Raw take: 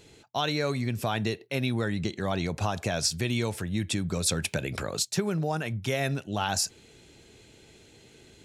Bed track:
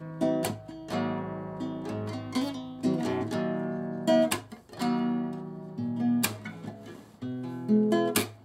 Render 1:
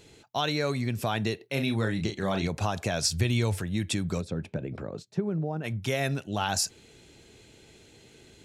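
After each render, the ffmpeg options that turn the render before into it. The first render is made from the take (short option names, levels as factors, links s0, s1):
-filter_complex "[0:a]asettb=1/sr,asplit=3[s0][s1][s2];[s0]atrim=end=1.534[s3];[s1]atrim=start=1.53:end=2.48,asetpts=PTS-STARTPTS,afade=t=in:d=0.004:c=qsin,afade=t=out:st=0.946:d=0.004:c=qsin,asplit=2[s4][s5];[s5]adelay=36,volume=0.447[s6];[s4][s6]amix=inputs=2:normalize=0,atrim=end_sample=41895[s7];[s2]atrim=start=2.476[s8];[s3][s7]acrossfade=d=0.004:c1=hsin:c2=qsin[s9];[s9][s8]acrossfade=d=0.004:c1=qsin:c2=hsin,asettb=1/sr,asplit=3[s10][s11][s12];[s10]atrim=end=3.084[s13];[s11]atrim=start=3.08:end=3.61,asetpts=PTS-STARTPTS,afade=t=in:d=0.004:c=qsin,afade=t=out:st=0.526:d=0.004:c=qsin,equalizer=f=94:w=3:g=13[s14];[s12]atrim=start=3.606[s15];[s13][s14]acrossfade=d=0.004:c1=hsin:c2=qsin[s16];[s16][s15]acrossfade=d=0.004:c1=qsin:c2=hsin,asplit=3[s17][s18][s19];[s17]afade=t=out:st=4.2:d=0.02[s20];[s18]bandpass=f=230:t=q:w=0.57,afade=t=in:st=4.2:d=0.02,afade=t=out:st=5.63:d=0.02[s21];[s19]afade=t=in:st=5.63:d=0.02[s22];[s20][s21][s22]amix=inputs=3:normalize=0"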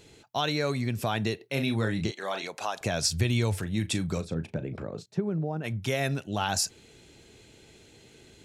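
-filter_complex "[0:a]asettb=1/sr,asplit=3[s0][s1][s2];[s0]atrim=end=2.114[s3];[s1]atrim=start=2.11:end=2.81,asetpts=PTS-STARTPTS,afade=t=in:d=0.004:c=qsin,afade=t=out:st=0.696:d=0.004:c=qsin,highpass=550[s4];[s2]atrim=start=2.806[s5];[s3][s4]acrossfade=d=0.004:c1=hsin:c2=qsin[s6];[s6][s5]acrossfade=d=0.004:c1=qsin:c2=hsin,asettb=1/sr,asplit=3[s7][s8][s9];[s7]atrim=end=3.594[s10];[s8]atrim=start=3.59:end=5.06,asetpts=PTS-STARTPTS,afade=t=in:d=0.004:c=qsin,afade=t=out:st=1.466:d=0.004:c=qsin,asplit=2[s11][s12];[s12]adelay=37,volume=0.224[s13];[s11][s13]amix=inputs=2:normalize=0,atrim=end_sample=64827[s14];[s9]atrim=start=5.056[s15];[s10][s14]acrossfade=d=0.004:c1=hsin:c2=qsin[s16];[s16][s15]acrossfade=d=0.004:c1=qsin:c2=hsin"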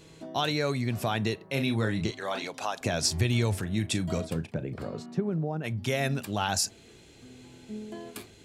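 -filter_complex "[1:a]volume=0.158[s0];[0:a][s0]amix=inputs=2:normalize=0"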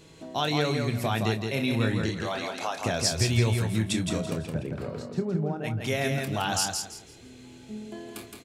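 -filter_complex "[0:a]asplit=2[s0][s1];[s1]adelay=27,volume=0.316[s2];[s0][s2]amix=inputs=2:normalize=0,asplit=2[s3][s4];[s4]aecho=0:1:167|334|501|668:0.596|0.155|0.0403|0.0105[s5];[s3][s5]amix=inputs=2:normalize=0"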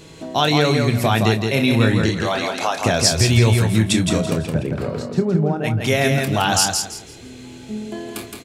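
-af "volume=3.16,alimiter=limit=0.708:level=0:latency=1"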